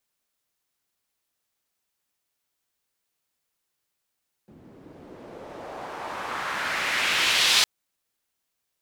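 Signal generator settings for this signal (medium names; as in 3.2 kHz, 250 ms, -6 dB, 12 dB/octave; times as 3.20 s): swept filtered noise pink, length 3.16 s bandpass, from 220 Hz, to 4 kHz, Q 1.5, exponential, gain ramp +33 dB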